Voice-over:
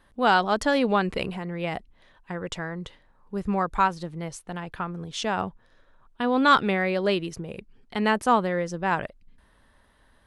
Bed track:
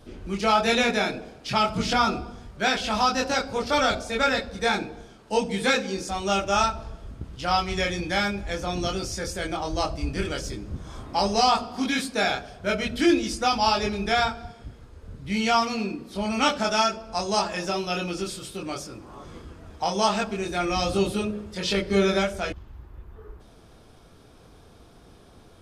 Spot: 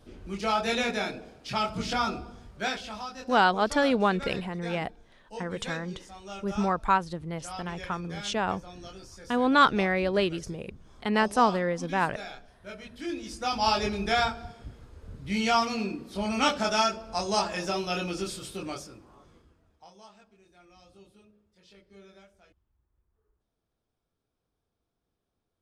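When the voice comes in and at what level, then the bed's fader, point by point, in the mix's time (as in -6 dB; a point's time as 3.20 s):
3.10 s, -1.5 dB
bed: 2.63 s -6 dB
3.08 s -17 dB
12.98 s -17 dB
13.69 s -2.5 dB
18.64 s -2.5 dB
20.13 s -31.5 dB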